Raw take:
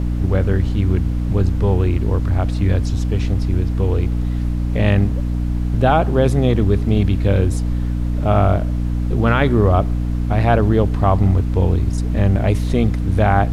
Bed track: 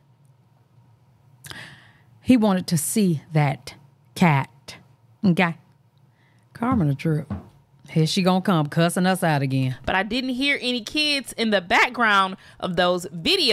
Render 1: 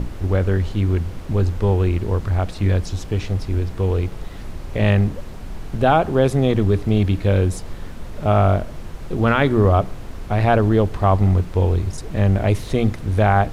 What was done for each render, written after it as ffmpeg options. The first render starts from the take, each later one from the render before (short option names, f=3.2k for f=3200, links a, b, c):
-af "bandreject=f=60:t=h:w=6,bandreject=f=120:t=h:w=6,bandreject=f=180:t=h:w=6,bandreject=f=240:t=h:w=6,bandreject=f=300:t=h:w=6"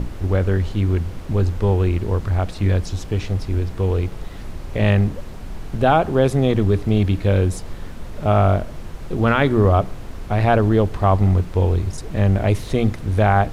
-af anull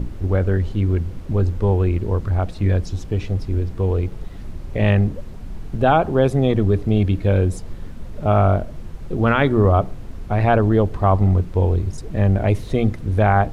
-af "afftdn=nr=7:nf=-33"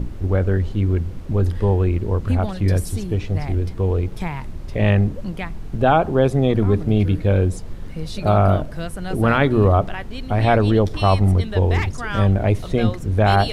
-filter_complex "[1:a]volume=-10.5dB[a];[0:a][a]amix=inputs=2:normalize=0"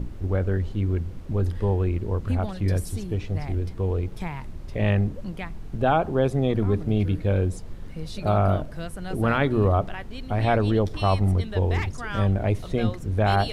-af "volume=-5.5dB"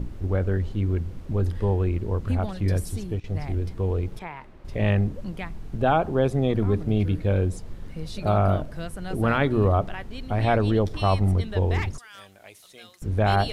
-filter_complex "[0:a]asettb=1/sr,asplit=3[a][b][c];[a]atrim=end=4.194[d];[b]atrim=start=4.19:end=4.65,asetpts=PTS-STARTPTS,afade=t=in:d=0.004:c=qsin,afade=t=out:st=0.456:d=0.004:c=qsin,bass=f=250:g=-14,treble=f=4k:g=-14[e];[c]atrim=start=4.646[f];[d][e]acrossfade=d=0.004:c1=hsin:c2=qsin[g];[g][f]acrossfade=d=0.004:c1=qsin:c2=hsin,asettb=1/sr,asplit=3[h][i][j];[h]atrim=end=11.984[k];[i]atrim=start=11.98:end=13.02,asetpts=PTS-STARTPTS,afade=t=in:d=0.004:c=qsin,afade=t=out:st=1.036:d=0.004:c=qsin,aderivative[l];[j]atrim=start=13.016[m];[k][l]acrossfade=d=0.004:c1=hsin:c2=qsin[n];[n][m]acrossfade=d=0.004:c1=qsin:c2=hsin,asplit=3[o][p][q];[o]atrim=end=3.2,asetpts=PTS-STARTPTS,afade=t=out:st=2.78:d=0.42:c=log:silence=0.149624[r];[p]atrim=start=3.2:end=3.24,asetpts=PTS-STARTPTS,volume=-16.5dB[s];[q]atrim=start=3.24,asetpts=PTS-STARTPTS,afade=t=in:d=0.42:c=log:silence=0.149624[t];[r][s][t]concat=n=3:v=0:a=1"